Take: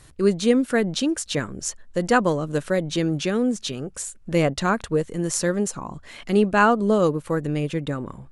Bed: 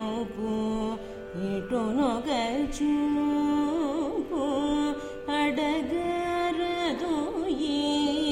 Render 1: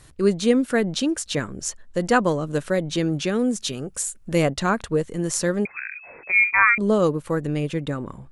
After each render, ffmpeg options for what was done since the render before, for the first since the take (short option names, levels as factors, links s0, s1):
-filter_complex "[0:a]asettb=1/sr,asplit=3[s0][s1][s2];[s0]atrim=end=3.394[s3];[s1]atrim=start=3.39:end=4.54,asetpts=PTS-STARTPTS,afade=t=in:d=0.004:c=qsin,afade=t=out:st=1.146:d=0.004:c=qsin,highshelf=f=8600:g=10.5[s4];[s2]atrim=start=4.536[s5];[s3][s4]acrossfade=d=0.004:c1=hsin:c2=qsin[s6];[s6][s5]acrossfade=d=0.004:c1=qsin:c2=hsin,asettb=1/sr,asplit=3[s7][s8][s9];[s7]atrim=end=5.654[s10];[s8]atrim=start=5.65:end=6.78,asetpts=PTS-STARTPTS,afade=t=in:d=0.004:c=qsin,afade=t=out:st=1.126:d=0.004:c=qsin,lowpass=f=2200:t=q:w=0.5098,lowpass=f=2200:t=q:w=0.6013,lowpass=f=2200:t=q:w=0.9,lowpass=f=2200:t=q:w=2.563,afreqshift=-2600[s11];[s9]atrim=start=6.776[s12];[s10][s11]acrossfade=d=0.004:c1=hsin:c2=qsin[s13];[s13][s12]acrossfade=d=0.004:c1=qsin:c2=hsin"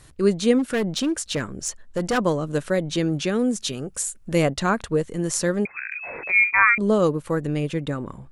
-filter_complex "[0:a]asplit=3[s0][s1][s2];[s0]afade=t=out:st=0.58:d=0.02[s3];[s1]volume=8.41,asoftclip=hard,volume=0.119,afade=t=in:st=0.58:d=0.02,afade=t=out:st=2.17:d=0.02[s4];[s2]afade=t=in:st=2.17:d=0.02[s5];[s3][s4][s5]amix=inputs=3:normalize=0,asettb=1/sr,asplit=3[s6][s7][s8];[s6]atrim=end=5.924[s9];[s7]atrim=start=5.92:end=6.49,asetpts=PTS-STARTPTS,afade=t=in:d=0.004:c=qsin,afade=t=out:st=0.566:d=0.004:c=qsin,acompressor=mode=upward:threshold=0.0708:ratio=2.5:attack=3.2:release=140:knee=2.83:detection=peak[s10];[s8]atrim=start=6.486[s11];[s9][s10]acrossfade=d=0.004:c1=hsin:c2=qsin[s12];[s12][s11]acrossfade=d=0.004:c1=qsin:c2=hsin"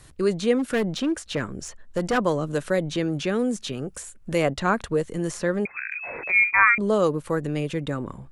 -filter_complex "[0:a]acrossover=split=370|3200[s0][s1][s2];[s0]alimiter=limit=0.075:level=0:latency=1[s3];[s2]acompressor=threshold=0.0126:ratio=6[s4];[s3][s1][s4]amix=inputs=3:normalize=0"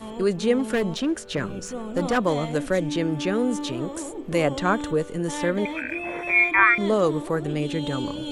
-filter_complex "[1:a]volume=0.531[s0];[0:a][s0]amix=inputs=2:normalize=0"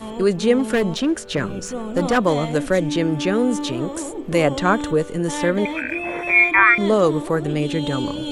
-af "volume=1.68,alimiter=limit=0.891:level=0:latency=1"